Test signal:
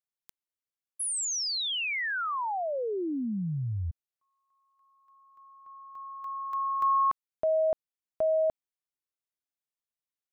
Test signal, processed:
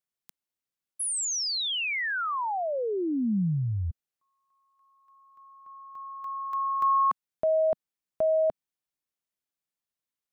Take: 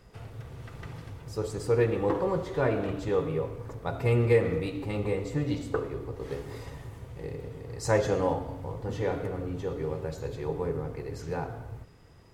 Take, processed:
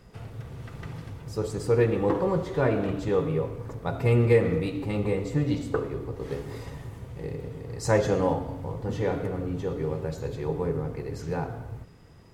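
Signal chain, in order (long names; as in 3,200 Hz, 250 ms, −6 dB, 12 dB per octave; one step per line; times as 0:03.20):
parametric band 190 Hz +4.5 dB 1.1 octaves
level +1.5 dB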